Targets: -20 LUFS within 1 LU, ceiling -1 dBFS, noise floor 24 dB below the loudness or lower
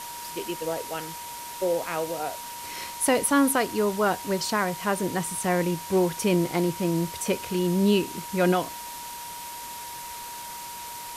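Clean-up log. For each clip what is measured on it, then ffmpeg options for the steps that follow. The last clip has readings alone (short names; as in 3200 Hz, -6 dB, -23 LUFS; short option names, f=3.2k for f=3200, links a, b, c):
steady tone 950 Hz; tone level -38 dBFS; noise floor -38 dBFS; noise floor target -51 dBFS; loudness -27.0 LUFS; peak -11.5 dBFS; loudness target -20.0 LUFS
-> -af "bandreject=f=950:w=30"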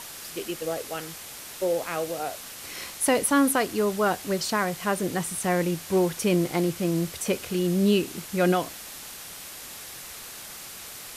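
steady tone none; noise floor -41 dBFS; noise floor target -50 dBFS
-> -af "afftdn=nr=9:nf=-41"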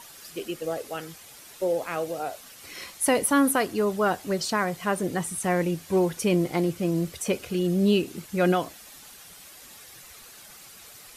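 noise floor -48 dBFS; noise floor target -50 dBFS
-> -af "afftdn=nr=6:nf=-48"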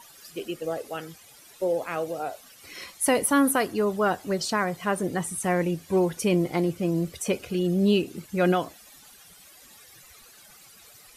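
noise floor -52 dBFS; loudness -26.0 LUFS; peak -12.0 dBFS; loudness target -20.0 LUFS
-> -af "volume=6dB"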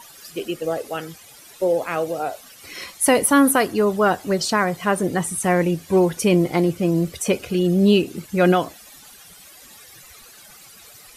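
loudness -20.0 LUFS; peak -6.0 dBFS; noise floor -46 dBFS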